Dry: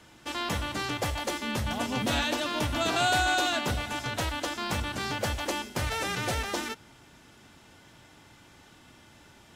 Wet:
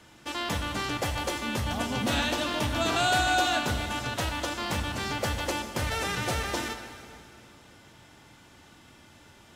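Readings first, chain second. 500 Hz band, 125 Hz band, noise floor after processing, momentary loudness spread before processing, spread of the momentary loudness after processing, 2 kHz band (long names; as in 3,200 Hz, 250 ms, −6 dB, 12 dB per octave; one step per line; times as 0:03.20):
+0.5 dB, +1.0 dB, −55 dBFS, 8 LU, 9 LU, +0.5 dB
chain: dense smooth reverb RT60 2.7 s, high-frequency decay 0.85×, DRR 7.5 dB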